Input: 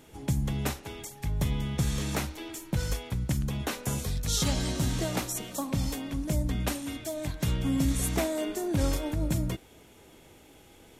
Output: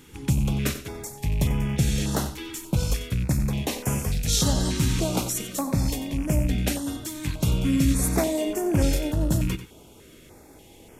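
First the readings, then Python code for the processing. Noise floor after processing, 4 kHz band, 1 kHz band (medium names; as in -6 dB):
-50 dBFS, +4.5 dB, +3.5 dB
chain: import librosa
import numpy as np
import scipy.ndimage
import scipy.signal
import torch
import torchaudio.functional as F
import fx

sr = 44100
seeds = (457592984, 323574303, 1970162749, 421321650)

y = fx.rattle_buzz(x, sr, strikes_db=-36.0, level_db=-34.0)
y = y + 10.0 ** (-12.5 / 20.0) * np.pad(y, (int(92 * sr / 1000.0), 0))[:len(y)]
y = fx.filter_held_notch(y, sr, hz=3.4, low_hz=650.0, high_hz=3900.0)
y = F.gain(torch.from_numpy(y), 5.5).numpy()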